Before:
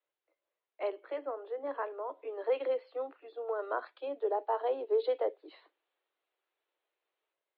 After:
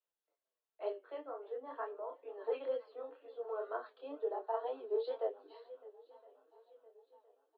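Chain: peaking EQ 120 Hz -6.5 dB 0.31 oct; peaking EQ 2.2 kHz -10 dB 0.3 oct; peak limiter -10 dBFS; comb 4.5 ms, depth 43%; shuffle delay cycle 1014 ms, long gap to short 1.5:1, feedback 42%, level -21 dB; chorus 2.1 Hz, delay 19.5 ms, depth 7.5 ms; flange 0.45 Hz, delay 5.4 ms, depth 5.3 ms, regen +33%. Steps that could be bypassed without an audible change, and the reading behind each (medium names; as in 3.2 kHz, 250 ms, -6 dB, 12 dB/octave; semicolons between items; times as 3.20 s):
peaking EQ 120 Hz: input has nothing below 250 Hz; peak limiter -10 dBFS: peak at its input -19.5 dBFS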